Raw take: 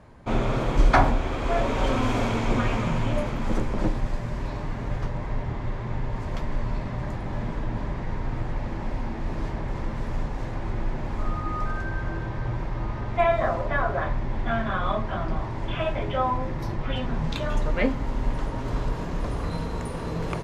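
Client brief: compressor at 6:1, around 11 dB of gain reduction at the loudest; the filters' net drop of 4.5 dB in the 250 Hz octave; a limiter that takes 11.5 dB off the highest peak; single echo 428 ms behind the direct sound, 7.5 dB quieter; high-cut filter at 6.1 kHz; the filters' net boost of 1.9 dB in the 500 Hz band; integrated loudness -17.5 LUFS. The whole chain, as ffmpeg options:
-af "lowpass=6100,equalizer=f=250:t=o:g=-7,equalizer=f=500:t=o:g=4,acompressor=threshold=0.0562:ratio=6,alimiter=level_in=1.41:limit=0.0631:level=0:latency=1,volume=0.708,aecho=1:1:428:0.422,volume=8.91"

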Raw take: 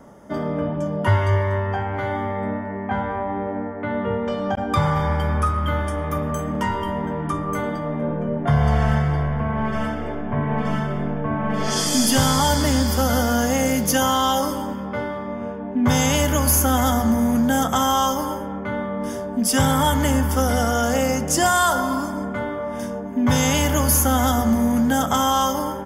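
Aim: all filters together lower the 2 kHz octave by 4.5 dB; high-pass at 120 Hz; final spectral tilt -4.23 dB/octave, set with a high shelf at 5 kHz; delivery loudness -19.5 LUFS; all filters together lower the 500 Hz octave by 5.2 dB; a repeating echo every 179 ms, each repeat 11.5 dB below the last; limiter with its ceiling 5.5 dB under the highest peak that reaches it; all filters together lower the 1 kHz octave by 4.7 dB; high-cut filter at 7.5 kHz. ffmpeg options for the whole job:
-af "highpass=120,lowpass=7500,equalizer=f=500:t=o:g=-5,equalizer=f=1000:t=o:g=-3.5,equalizer=f=2000:t=o:g=-5,highshelf=f=5000:g=5.5,alimiter=limit=0.237:level=0:latency=1,aecho=1:1:179|358|537:0.266|0.0718|0.0194,volume=1.68"

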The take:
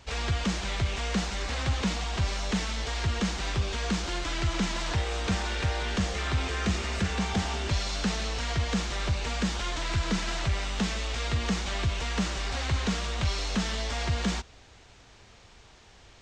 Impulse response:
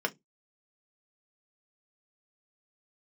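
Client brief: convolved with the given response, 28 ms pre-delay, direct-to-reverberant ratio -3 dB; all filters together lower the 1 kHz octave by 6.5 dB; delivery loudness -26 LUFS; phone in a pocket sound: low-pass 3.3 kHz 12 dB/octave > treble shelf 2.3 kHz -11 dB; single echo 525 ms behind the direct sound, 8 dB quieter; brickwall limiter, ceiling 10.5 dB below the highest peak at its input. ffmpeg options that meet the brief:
-filter_complex "[0:a]equalizer=f=1000:t=o:g=-6.5,alimiter=level_in=1.78:limit=0.0631:level=0:latency=1,volume=0.562,aecho=1:1:525:0.398,asplit=2[s0][s1];[1:a]atrim=start_sample=2205,adelay=28[s2];[s1][s2]afir=irnorm=-1:irlink=0,volume=0.596[s3];[s0][s3]amix=inputs=2:normalize=0,lowpass=3300,highshelf=f=2300:g=-11,volume=3.16"

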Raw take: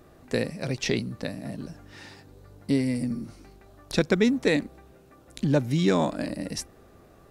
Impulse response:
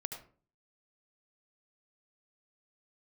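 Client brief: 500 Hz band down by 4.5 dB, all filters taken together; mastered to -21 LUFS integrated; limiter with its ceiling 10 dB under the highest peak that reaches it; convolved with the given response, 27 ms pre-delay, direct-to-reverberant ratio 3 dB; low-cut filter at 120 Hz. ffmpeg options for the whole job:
-filter_complex "[0:a]highpass=120,equalizer=f=500:t=o:g=-5.5,alimiter=limit=0.126:level=0:latency=1,asplit=2[s0][s1];[1:a]atrim=start_sample=2205,adelay=27[s2];[s1][s2]afir=irnorm=-1:irlink=0,volume=0.75[s3];[s0][s3]amix=inputs=2:normalize=0,volume=2.82"

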